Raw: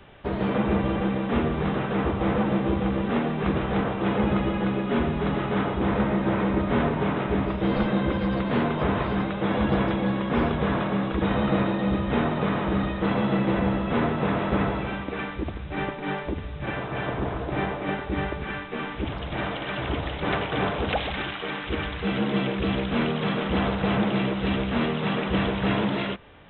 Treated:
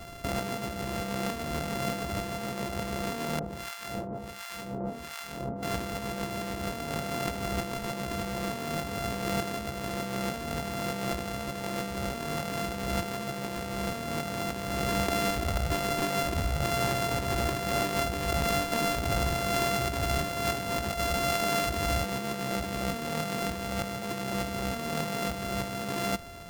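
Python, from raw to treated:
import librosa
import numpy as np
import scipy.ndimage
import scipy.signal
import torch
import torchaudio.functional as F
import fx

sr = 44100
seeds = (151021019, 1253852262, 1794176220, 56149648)

y = np.r_[np.sort(x[:len(x) // 64 * 64].reshape(-1, 64), axis=1).ravel(), x[len(x) // 64 * 64:]]
y = fx.over_compress(y, sr, threshold_db=-32.0, ratio=-1.0)
y = fx.harmonic_tremolo(y, sr, hz=1.4, depth_pct=100, crossover_hz=960.0, at=(3.39, 5.63))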